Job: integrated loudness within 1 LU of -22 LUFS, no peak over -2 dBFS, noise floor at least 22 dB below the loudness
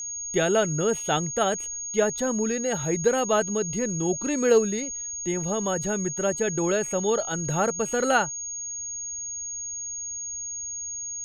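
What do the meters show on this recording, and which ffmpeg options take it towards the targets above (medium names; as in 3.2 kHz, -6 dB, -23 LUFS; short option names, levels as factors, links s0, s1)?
steady tone 6.6 kHz; tone level -31 dBFS; loudness -25.5 LUFS; peak level -8.0 dBFS; loudness target -22.0 LUFS
-> -af "bandreject=f=6600:w=30"
-af "volume=1.5"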